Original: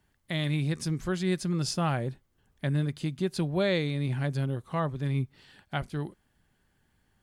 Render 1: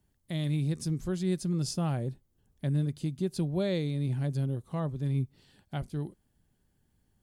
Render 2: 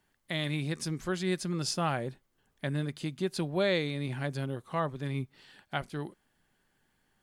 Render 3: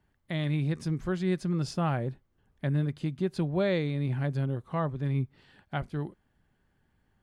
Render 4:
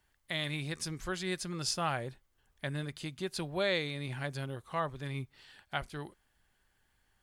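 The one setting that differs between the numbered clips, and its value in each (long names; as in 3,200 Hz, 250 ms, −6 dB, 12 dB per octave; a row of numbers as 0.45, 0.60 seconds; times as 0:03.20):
parametric band, centre frequency: 1,700, 60, 13,000, 180 Hertz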